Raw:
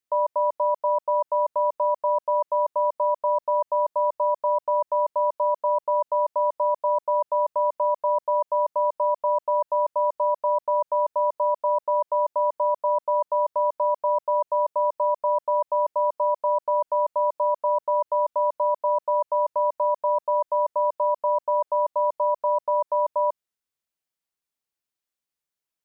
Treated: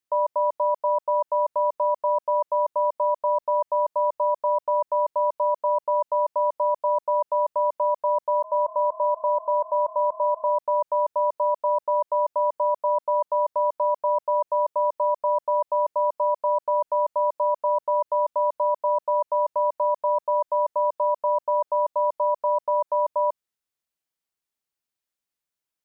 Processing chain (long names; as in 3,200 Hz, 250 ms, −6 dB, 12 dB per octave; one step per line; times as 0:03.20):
0:08.25–0:10.56: echo with shifted repeats 162 ms, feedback 49%, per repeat +35 Hz, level −19.5 dB